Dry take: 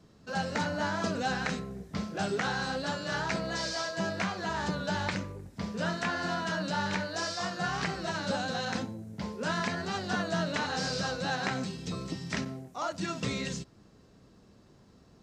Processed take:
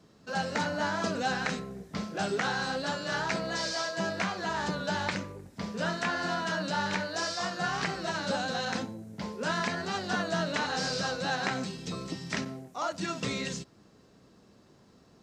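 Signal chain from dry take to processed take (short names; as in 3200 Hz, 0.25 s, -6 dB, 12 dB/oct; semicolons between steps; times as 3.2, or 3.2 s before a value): low shelf 100 Hz -11 dB; gain +1.5 dB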